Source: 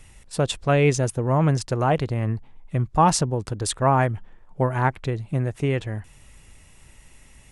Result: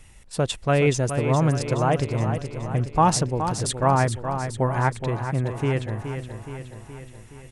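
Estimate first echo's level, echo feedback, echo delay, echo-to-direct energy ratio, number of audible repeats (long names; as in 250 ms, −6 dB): −8.5 dB, 59%, 421 ms, −6.5 dB, 6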